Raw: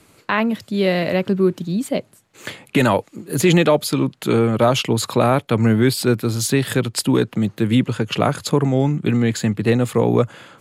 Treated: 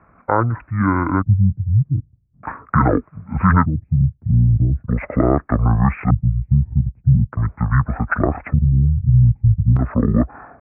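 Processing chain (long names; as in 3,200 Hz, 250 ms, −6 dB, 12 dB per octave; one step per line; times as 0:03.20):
downsampling to 11,025 Hz
auto-filter low-pass square 0.41 Hz 240–2,600 Hz
pitch shifter −11.5 semitones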